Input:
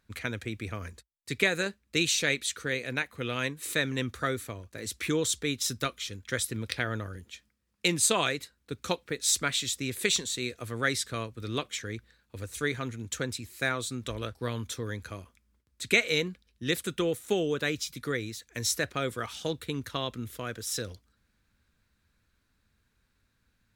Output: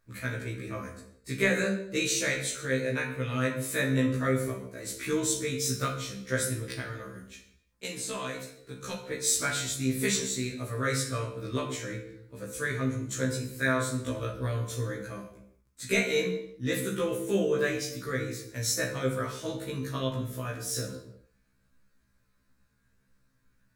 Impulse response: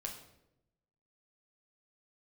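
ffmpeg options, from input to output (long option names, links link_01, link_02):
-filter_complex "[0:a]equalizer=frequency=3200:width=1.3:gain=-8,bandreject=frequency=780:width=12,asettb=1/sr,asplit=3[link_01][link_02][link_03];[link_01]atrim=end=6.664[link_04];[link_02]atrim=start=6.66:end=9.11,asetpts=PTS-STARTPTS,afade=type=in:duration=0.004:curve=qsin,afade=type=out:start_time=2.446:duration=0.004:curve=qsin,acrossover=split=1500|4800[link_05][link_06][link_07];[link_05]acompressor=threshold=-38dB:ratio=4[link_08];[link_06]acompressor=threshold=-41dB:ratio=4[link_09];[link_07]acompressor=threshold=-41dB:ratio=4[link_10];[link_08][link_09][link_10]amix=inputs=3:normalize=0[link_11];[link_03]atrim=start=9.106[link_12];[link_04][link_11]acrossfade=duration=0.004:curve1=hsin:curve2=qsin[link_13];[link_13][link_12]acrossfade=duration=0.004:curve1=qsin:curve2=hsin[link_14];[1:a]atrim=start_sample=2205,afade=type=out:start_time=0.44:duration=0.01,atrim=end_sample=19845[link_15];[link_14][link_15]afir=irnorm=-1:irlink=0,afftfilt=real='re*1.73*eq(mod(b,3),0)':imag='im*1.73*eq(mod(b,3),0)':win_size=2048:overlap=0.75,volume=6dB"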